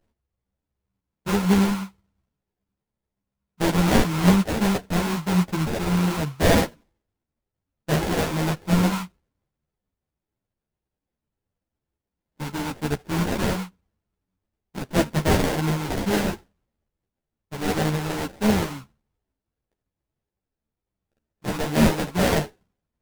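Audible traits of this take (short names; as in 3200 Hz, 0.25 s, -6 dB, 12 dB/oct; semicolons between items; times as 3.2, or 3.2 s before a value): aliases and images of a low sample rate 1200 Hz, jitter 20%; a shimmering, thickened sound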